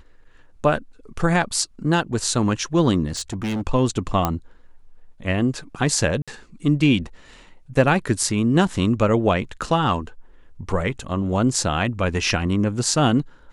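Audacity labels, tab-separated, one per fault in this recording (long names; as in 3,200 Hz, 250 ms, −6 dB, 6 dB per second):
3.070000	3.620000	clipping −22.5 dBFS
4.250000	4.250000	click −6 dBFS
6.220000	6.280000	drop-out 56 ms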